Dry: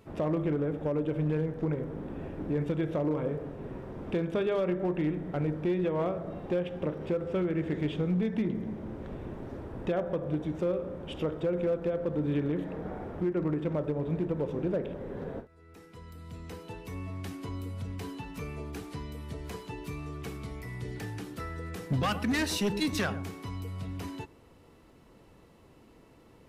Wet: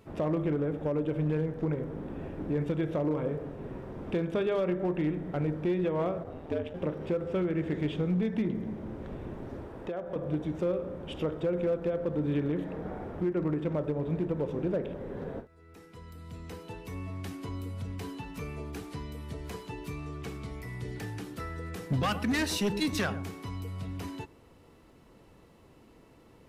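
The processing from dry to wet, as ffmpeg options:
-filter_complex "[0:a]asplit=3[a][b][c];[a]afade=t=out:st=6.23:d=0.02[d];[b]aeval=exprs='val(0)*sin(2*PI*77*n/s)':c=same,afade=t=in:st=6.23:d=0.02,afade=t=out:st=6.73:d=0.02[e];[c]afade=t=in:st=6.73:d=0.02[f];[d][e][f]amix=inputs=3:normalize=0,asettb=1/sr,asplit=3[g][h][i];[g]atrim=end=9.644[j];[h]atrim=start=9.64:end=10.16,asetpts=PTS-STARTPTS,afade=t=in:d=0.004:c=qsin,afade=t=out:st=0.516:d=0.004:c=qsin,acrossover=split=300|1600[k][l][m];[k]acompressor=threshold=-47dB:ratio=4[n];[l]acompressor=threshold=-34dB:ratio=4[o];[m]acompressor=threshold=-55dB:ratio=4[p];[n][o][p]amix=inputs=3:normalize=0[q];[i]atrim=start=10.156[r];[j][q]acrossfade=d=0.004:c1=hsin:c2=qsin[s];[s][r]acrossfade=d=0.004:c1=qsin:c2=hsin,asettb=1/sr,asplit=3[t][u][v];[t]atrim=end=19.924[w];[u]atrim=start=19.92:end=20.53,asetpts=PTS-STARTPTS,afade=t=in:d=0.004:c=qsin,afade=t=out:st=0.606:d=0.004:c=qsin,equalizer=f=12k:w=1.5:g=-6[x];[v]atrim=start=20.526[y];[w][x]acrossfade=d=0.004:c1=hsin:c2=qsin[z];[z][y]acrossfade=d=0.004:c1=qsin:c2=hsin"

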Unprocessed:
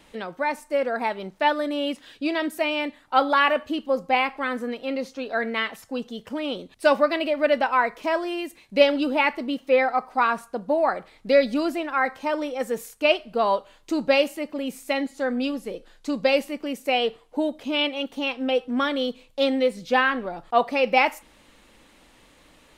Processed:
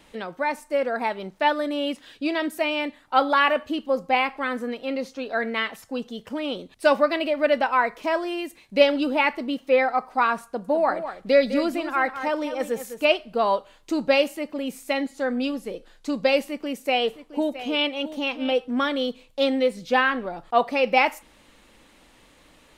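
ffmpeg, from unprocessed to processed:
-filter_complex "[0:a]asettb=1/sr,asplit=3[a][b][c];[a]atrim=end=10.444[d];[b]atrim=start=10.44:end=13.05,asetpts=PTS-STARTPTS,afade=t=in:d=0.004:c=qsin,afade=t=out:st=2.606:d=0.004:c=qsin,aecho=1:1:204:0.299,atrim=end_sample=115101[e];[c]atrim=start=13.046[f];[d][e]acrossfade=d=0.004:c1=hsin:c2=qsin[g];[g][f]acrossfade=d=0.004:c1=qsin:c2=hsin,asettb=1/sr,asplit=3[h][i][j];[h]atrim=end=16.414[k];[i]atrim=start=16.41:end=18.53,asetpts=PTS-STARTPTS,afade=t=in:d=0.004:c=qsin,afade=t=out:st=2.116:d=0.004:c=qsin,aecho=1:1:666:0.2,atrim=end_sample=93492[l];[j]atrim=start=18.526[m];[k][l]acrossfade=d=0.004:c1=hsin:c2=qsin[n];[n][m]acrossfade=d=0.004:c1=qsin:c2=hsin"

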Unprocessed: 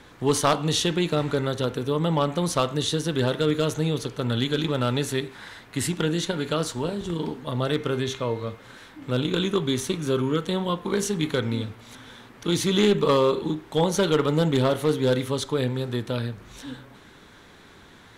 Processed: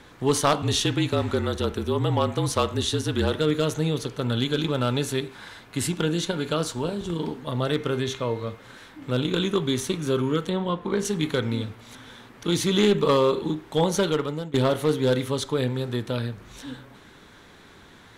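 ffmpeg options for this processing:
-filter_complex "[0:a]asettb=1/sr,asplit=3[a][b][c];[a]atrim=end=0.624[d];[b]atrim=start=0.62:end=3.39,asetpts=PTS-STARTPTS,afade=t=in:d=0.004:c=qsin,afade=t=out:st=2.766:d=0.004:c=qsin,afreqshift=-39[e];[c]atrim=start=3.386[f];[d][e]acrossfade=d=0.004:c1=hsin:c2=qsin[g];[g][f]acrossfade=d=0.004:c1=qsin:c2=hsin,asettb=1/sr,asplit=3[h][i][j];[h]atrim=end=4.254[k];[i]atrim=start=4.25:end=7.17,asetpts=PTS-STARTPTS,afade=t=in:d=0.004:c=qsin,afade=t=out:st=2.916:d=0.004:c=qsin,bandreject=f=1.9k:w=12[l];[j]atrim=start=7.166[m];[k][l]acrossfade=d=0.004:c1=hsin:c2=qsin[n];[n][m]acrossfade=d=0.004:c1=qsin:c2=hsin,asettb=1/sr,asplit=3[o][p][q];[o]atrim=end=10.494[r];[p]atrim=start=10.49:end=11.05,asetpts=PTS-STARTPTS,afade=t=in:d=0.004:c=qsin,afade=t=out:st=0.556:d=0.004:c=qsin,lowpass=f=2.6k:p=1[s];[q]atrim=start=11.046[t];[r][s]acrossfade=d=0.004:c1=hsin:c2=qsin[u];[u][t]acrossfade=d=0.004:c1=qsin:c2=hsin,asplit=2[v][w];[v]atrim=end=14.54,asetpts=PTS-STARTPTS,afade=t=out:st=13.96:d=0.58:silence=0.1[x];[w]atrim=start=14.54,asetpts=PTS-STARTPTS,afade=t=in:d=0.004:c=hsin:silence=0.1[y];[x][y]concat=n=2:v=0:a=1"

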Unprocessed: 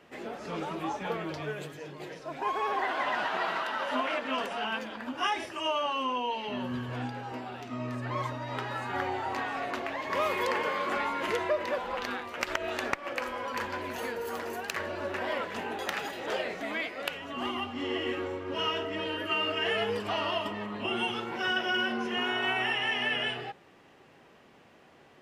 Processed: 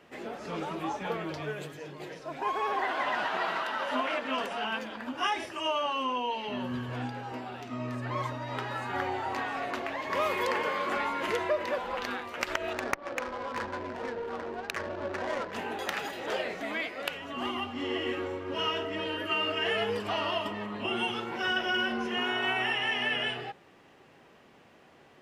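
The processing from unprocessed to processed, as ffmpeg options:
-filter_complex "[0:a]asettb=1/sr,asplit=3[a][b][c];[a]atrim=end=12.734[d];[b]atrim=start=12.73:end=15.53,asetpts=PTS-STARTPTS,afade=t=in:d=0.004:c=qsin,afade=t=out:st=2.796:d=0.004:c=qsin,adynamicsmooth=sensitivity=4.5:basefreq=560[e];[c]atrim=start=15.526[f];[d][e]acrossfade=d=0.004:c1=hsin:c2=qsin[g];[g][f]acrossfade=d=0.004:c1=qsin:c2=hsin,asettb=1/sr,asplit=3[h][i][j];[h]atrim=end=21.424[k];[i]atrim=start=21.42:end=22.08,asetpts=PTS-STARTPTS,afade=t=in:d=0.004:c=qsin,afade=t=out:st=0.656:d=0.004:c=qsin,aeval=exprs='val(0)+0.001*(sin(2*PI*50*n/s)+sin(2*PI*2*50*n/s)/2+sin(2*PI*3*50*n/s)/3+sin(2*PI*4*50*n/s)/4+sin(2*PI*5*50*n/s)/5)':c=same[l];[j]atrim=start=22.076[m];[k][l]acrossfade=d=0.004:c1=hsin:c2=qsin[n];[n][m]acrossfade=d=0.004:c1=qsin:c2=hsin"

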